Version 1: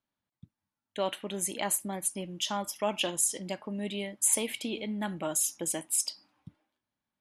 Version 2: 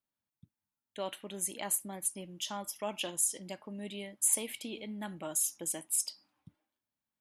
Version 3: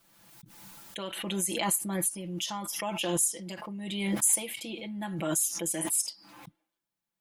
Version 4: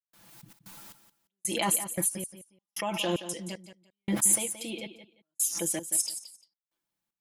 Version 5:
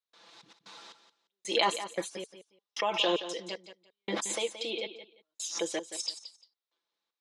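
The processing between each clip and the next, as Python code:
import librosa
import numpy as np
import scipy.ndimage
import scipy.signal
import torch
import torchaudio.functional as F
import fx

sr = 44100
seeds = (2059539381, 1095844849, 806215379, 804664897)

y1 = fx.high_shelf(x, sr, hz=9500.0, db=9.5)
y1 = y1 * librosa.db_to_amplitude(-7.0)
y2 = y1 + 0.91 * np.pad(y1, (int(5.9 * sr / 1000.0), 0))[:len(y1)]
y2 = fx.pre_swell(y2, sr, db_per_s=35.0)
y3 = fx.step_gate(y2, sr, bpm=114, pattern='.xxx.xx...', floor_db=-60.0, edge_ms=4.5)
y3 = fx.echo_feedback(y3, sr, ms=174, feedback_pct=19, wet_db=-12.0)
y3 = y3 * librosa.db_to_amplitude(1.5)
y4 = fx.cabinet(y3, sr, low_hz=410.0, low_slope=12, high_hz=5900.0, hz=(440.0, 1100.0, 3800.0), db=(10, 4, 9))
y4 = y4 * librosa.db_to_amplitude(1.5)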